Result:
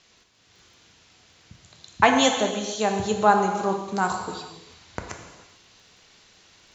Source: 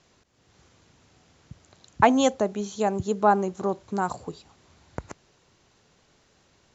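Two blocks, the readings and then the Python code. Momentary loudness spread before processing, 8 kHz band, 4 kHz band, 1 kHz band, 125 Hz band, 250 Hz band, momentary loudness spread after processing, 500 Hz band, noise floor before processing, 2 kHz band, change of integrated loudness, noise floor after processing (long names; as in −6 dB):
21 LU, can't be measured, +10.0 dB, +2.5 dB, +0.5 dB, 0.0 dB, 21 LU, +1.0 dB, −64 dBFS, +6.5 dB, +2.0 dB, −59 dBFS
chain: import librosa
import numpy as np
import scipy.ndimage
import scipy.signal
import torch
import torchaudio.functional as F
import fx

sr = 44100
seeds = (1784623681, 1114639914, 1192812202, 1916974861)

p1 = fx.peak_eq(x, sr, hz=3600.0, db=11.5, octaves=2.7)
p2 = fx.dmg_crackle(p1, sr, seeds[0], per_s=17.0, level_db=-52.0)
p3 = fx.rider(p2, sr, range_db=3, speed_s=2.0)
p4 = p2 + F.gain(torch.from_numpy(p3), 0.0).numpy()
p5 = fx.rev_gated(p4, sr, seeds[1], gate_ms=470, shape='falling', drr_db=3.0)
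y = F.gain(torch.from_numpy(p5), -8.5).numpy()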